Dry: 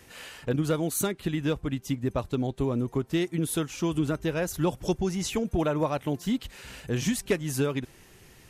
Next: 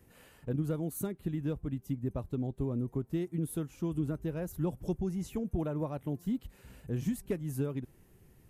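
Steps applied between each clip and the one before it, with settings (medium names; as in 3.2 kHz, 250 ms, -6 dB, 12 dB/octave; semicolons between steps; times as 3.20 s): FFT filter 180 Hz 0 dB, 3.4 kHz -16 dB, 5.8 kHz -16 dB, 13 kHz -4 dB; trim -4 dB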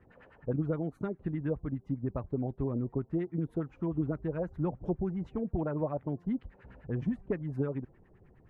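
LFO low-pass sine 9.7 Hz 570–2000 Hz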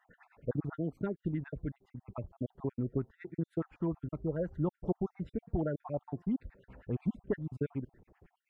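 random holes in the spectrogram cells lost 44%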